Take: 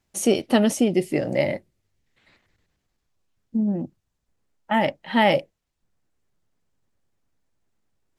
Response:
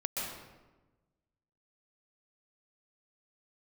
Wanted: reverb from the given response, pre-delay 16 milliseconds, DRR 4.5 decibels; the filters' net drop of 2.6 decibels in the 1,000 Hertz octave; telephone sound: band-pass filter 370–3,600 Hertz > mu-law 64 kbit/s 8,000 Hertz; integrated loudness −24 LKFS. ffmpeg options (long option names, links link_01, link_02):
-filter_complex "[0:a]equalizer=frequency=1000:width_type=o:gain=-3,asplit=2[link_01][link_02];[1:a]atrim=start_sample=2205,adelay=16[link_03];[link_02][link_03]afir=irnorm=-1:irlink=0,volume=-9dB[link_04];[link_01][link_04]amix=inputs=2:normalize=0,highpass=370,lowpass=3600,volume=1.5dB" -ar 8000 -c:a pcm_mulaw